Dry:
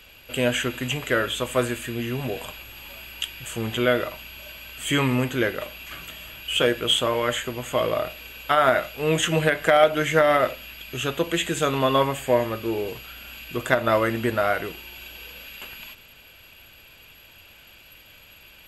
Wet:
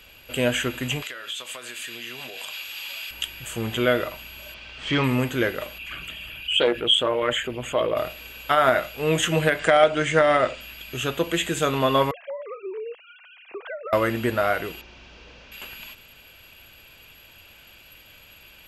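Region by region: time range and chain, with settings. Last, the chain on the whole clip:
1.02–3.11 HPF 750 Hz 6 dB/oct + compressor 12:1, threshold -37 dBFS + bell 4200 Hz +10.5 dB 2.4 oct
4.54–5.04 CVSD 64 kbps + LPF 4900 Hz 24 dB/oct
5.78–7.97 formant sharpening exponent 1.5 + bell 2500 Hz +3.5 dB 1.1 oct + Doppler distortion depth 0.16 ms
9.59–10.61 brick-wall FIR low-pass 9700 Hz + mismatched tape noise reduction encoder only
12.11–13.93 sine-wave speech + compressor 10:1, threshold -29 dBFS + air absorption 190 m
14.81–15.52 delta modulation 32 kbps, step -56.5 dBFS + high shelf 4700 Hz +11 dB
whole clip: dry

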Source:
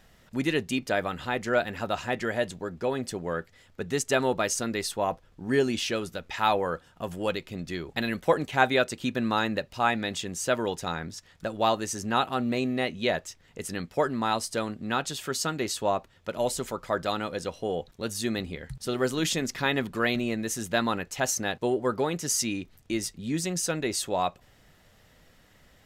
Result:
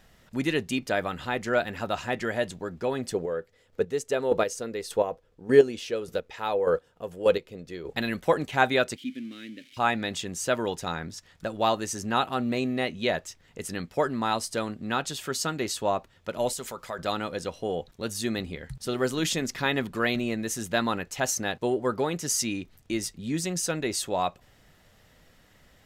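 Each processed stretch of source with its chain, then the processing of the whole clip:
3.14–7.96 bell 470 Hz +13 dB 0.52 oct + chopper 1.7 Hz, depth 60%, duty 20%
8.96–9.77 switching spikes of -21.5 dBFS + vowel filter i
16.53–16.99 tilt +1.5 dB/oct + notch 310 Hz, Q 6.8 + compressor 2:1, threshold -34 dBFS
whole clip: dry

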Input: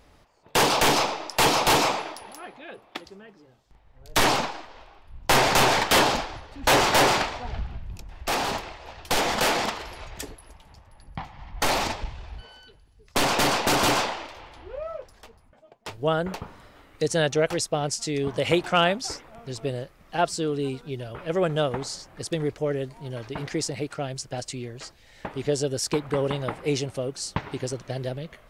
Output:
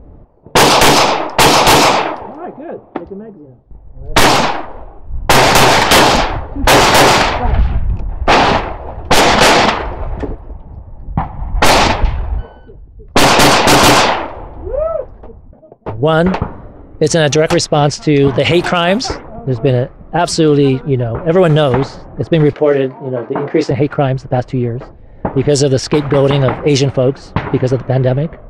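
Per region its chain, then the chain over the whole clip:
22.53–23.71 HPF 270 Hz + high shelf 6700 Hz -9 dB + doubler 23 ms -5.5 dB
whole clip: low shelf 200 Hz +3.5 dB; low-pass opened by the level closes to 460 Hz, open at -18 dBFS; maximiser +19 dB; gain -1 dB

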